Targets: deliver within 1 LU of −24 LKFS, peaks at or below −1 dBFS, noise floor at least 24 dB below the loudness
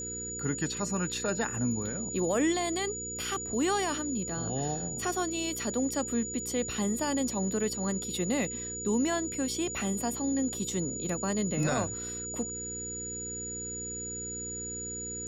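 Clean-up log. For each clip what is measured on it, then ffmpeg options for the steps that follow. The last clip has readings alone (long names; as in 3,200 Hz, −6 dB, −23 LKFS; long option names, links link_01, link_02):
mains hum 60 Hz; hum harmonics up to 480 Hz; level of the hum −42 dBFS; interfering tone 6,900 Hz; level of the tone −36 dBFS; integrated loudness −31.0 LKFS; sample peak −17.0 dBFS; target loudness −24.0 LKFS
→ -af "bandreject=frequency=60:width_type=h:width=4,bandreject=frequency=120:width_type=h:width=4,bandreject=frequency=180:width_type=h:width=4,bandreject=frequency=240:width_type=h:width=4,bandreject=frequency=300:width_type=h:width=4,bandreject=frequency=360:width_type=h:width=4,bandreject=frequency=420:width_type=h:width=4,bandreject=frequency=480:width_type=h:width=4"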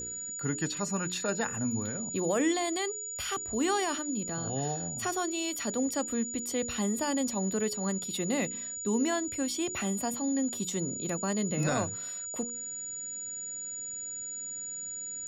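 mains hum none found; interfering tone 6,900 Hz; level of the tone −36 dBFS
→ -af "bandreject=frequency=6900:width=30"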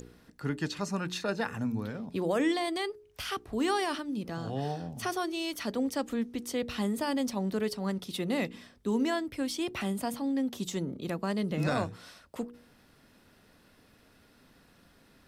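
interfering tone none found; integrated loudness −33.0 LKFS; sample peak −18.0 dBFS; target loudness −24.0 LKFS
→ -af "volume=9dB"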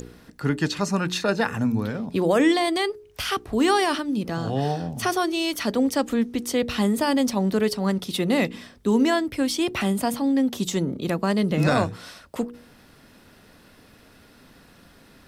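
integrated loudness −24.0 LKFS; sample peak −9.0 dBFS; background noise floor −53 dBFS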